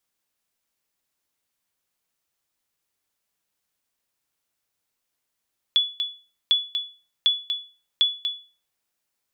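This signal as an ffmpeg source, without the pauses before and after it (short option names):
-f lavfi -i "aevalsrc='0.266*(sin(2*PI*3420*mod(t,0.75))*exp(-6.91*mod(t,0.75)/0.36)+0.422*sin(2*PI*3420*max(mod(t,0.75)-0.24,0))*exp(-6.91*max(mod(t,0.75)-0.24,0)/0.36))':d=3:s=44100"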